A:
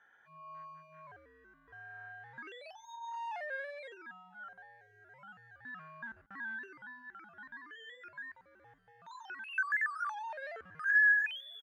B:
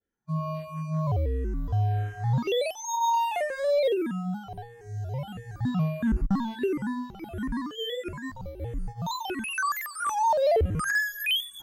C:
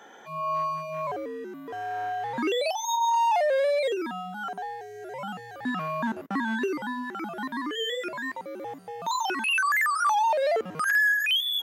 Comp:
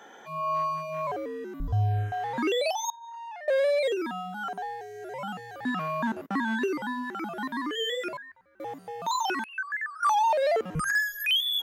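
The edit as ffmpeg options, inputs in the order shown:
-filter_complex "[1:a]asplit=2[a][b];[0:a]asplit=3[c][d][e];[2:a]asplit=6[f][g][h][i][j][k];[f]atrim=end=1.602[l];[a]atrim=start=1.598:end=2.122[m];[g]atrim=start=2.118:end=2.902[n];[c]atrim=start=2.898:end=3.482[o];[h]atrim=start=3.478:end=8.172[p];[d]atrim=start=8.168:end=8.602[q];[i]atrim=start=8.598:end=9.442[r];[e]atrim=start=9.438:end=10.032[s];[j]atrim=start=10.028:end=10.752[t];[b]atrim=start=10.748:end=11.262[u];[k]atrim=start=11.258[v];[l][m]acrossfade=d=0.004:c1=hsin:c2=hsin[w];[w][n]acrossfade=d=0.004:c1=hsin:c2=hsin[x];[x][o]acrossfade=d=0.004:c1=hsin:c2=hsin[y];[y][p]acrossfade=d=0.004:c1=hsin:c2=hsin[z];[z][q]acrossfade=d=0.004:c1=hsin:c2=hsin[aa];[aa][r]acrossfade=d=0.004:c1=hsin:c2=hsin[ab];[ab][s]acrossfade=d=0.004:c1=hsin:c2=hsin[ac];[ac][t]acrossfade=d=0.004:c1=hsin:c2=hsin[ad];[ad][u]acrossfade=d=0.004:c1=hsin:c2=hsin[ae];[ae][v]acrossfade=d=0.004:c1=hsin:c2=hsin"

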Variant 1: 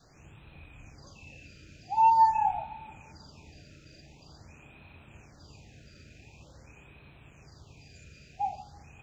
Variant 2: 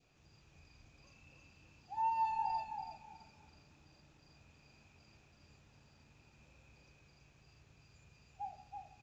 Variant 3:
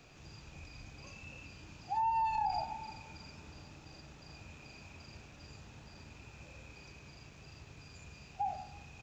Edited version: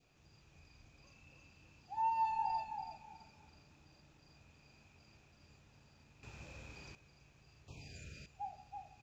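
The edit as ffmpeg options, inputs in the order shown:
-filter_complex "[1:a]asplit=3[a][b][c];[a]atrim=end=6.232[d];[2:a]atrim=start=6.228:end=6.952[e];[b]atrim=start=6.948:end=7.682[f];[0:a]atrim=start=7.678:end=8.262[g];[c]atrim=start=8.258[h];[d][e]acrossfade=d=0.004:c1=hsin:c2=hsin[i];[i][f]acrossfade=d=0.004:c1=hsin:c2=hsin[j];[j][g]acrossfade=d=0.004:c1=hsin:c2=hsin[k];[k][h]acrossfade=d=0.004:c1=hsin:c2=hsin"

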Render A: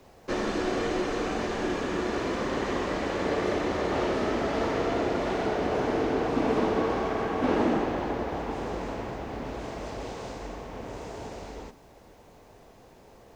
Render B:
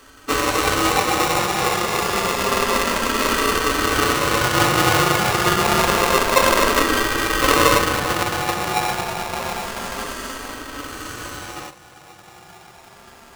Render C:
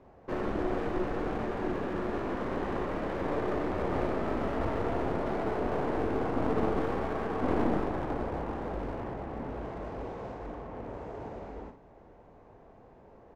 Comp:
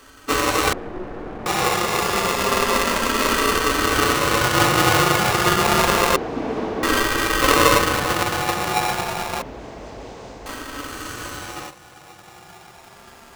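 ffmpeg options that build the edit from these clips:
-filter_complex "[0:a]asplit=2[a][b];[1:a]asplit=4[c][d][e][f];[c]atrim=end=0.732[g];[2:a]atrim=start=0.728:end=1.462[h];[d]atrim=start=1.458:end=6.162[i];[a]atrim=start=6.158:end=6.832[j];[e]atrim=start=6.828:end=9.422[k];[b]atrim=start=9.418:end=10.462[l];[f]atrim=start=10.458[m];[g][h]acrossfade=d=0.004:c1=hsin:c2=hsin[n];[n][i]acrossfade=d=0.004:c1=hsin:c2=hsin[o];[o][j]acrossfade=d=0.004:c1=hsin:c2=hsin[p];[p][k]acrossfade=d=0.004:c1=hsin:c2=hsin[q];[q][l]acrossfade=d=0.004:c1=hsin:c2=hsin[r];[r][m]acrossfade=d=0.004:c1=hsin:c2=hsin"

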